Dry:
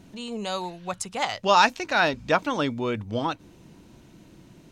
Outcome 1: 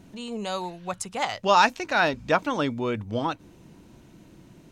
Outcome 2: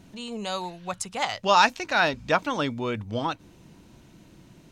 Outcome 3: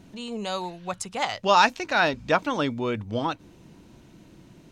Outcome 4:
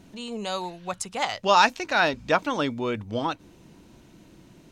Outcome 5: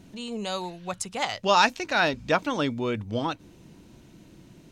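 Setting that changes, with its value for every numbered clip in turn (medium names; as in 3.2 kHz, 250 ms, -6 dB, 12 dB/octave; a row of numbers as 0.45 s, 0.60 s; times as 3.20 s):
peaking EQ, frequency: 4.2 kHz, 350 Hz, 15 kHz, 120 Hz, 1 kHz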